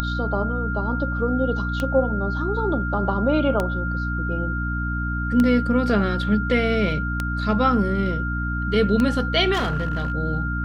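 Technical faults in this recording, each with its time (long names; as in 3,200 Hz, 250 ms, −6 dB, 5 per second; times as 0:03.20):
mains hum 60 Hz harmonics 5 −26 dBFS
scratch tick 33 1/3 rpm −10 dBFS
whistle 1,400 Hz −28 dBFS
0:09.53–0:10.12: clipping −19 dBFS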